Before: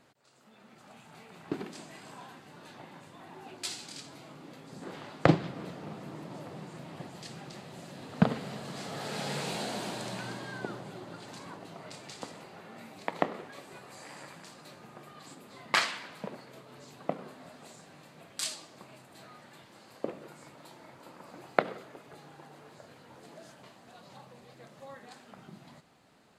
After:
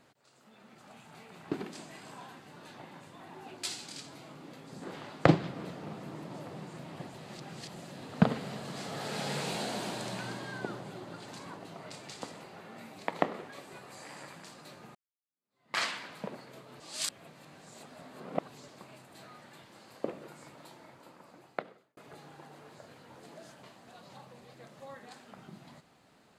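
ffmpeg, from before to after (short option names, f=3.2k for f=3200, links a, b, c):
-filter_complex "[0:a]asplit=7[a][b][c][d][e][f][g];[a]atrim=end=7.142[h];[b]atrim=start=7.138:end=7.762,asetpts=PTS-STARTPTS,areverse[i];[c]atrim=start=7.758:end=14.95,asetpts=PTS-STARTPTS,afade=t=out:st=7.188:d=0.004:c=hsin[j];[d]atrim=start=14.95:end=16.802,asetpts=PTS-STARTPTS,afade=t=in:d=0.88:c=exp[k];[e]atrim=start=16.798:end=18.682,asetpts=PTS-STARTPTS,areverse[l];[f]atrim=start=18.678:end=21.97,asetpts=PTS-STARTPTS,afade=t=out:st=1.922:d=1.37[m];[g]atrim=start=21.97,asetpts=PTS-STARTPTS,afade=t=in:d=0.004:c=hsin[n];[h][i]acrossfade=d=0.004:c1=hsin:c2=hsin[o];[j][k]concat=n=2:v=0:a=1[p];[o][p]acrossfade=d=0.004:c1=hsin:c2=hsin[q];[q][l]acrossfade=d=0.004:c1=hsin:c2=hsin[r];[m][n]concat=n=2:v=0:a=1[s];[r][s]acrossfade=d=0.004:c1=hsin:c2=hsin"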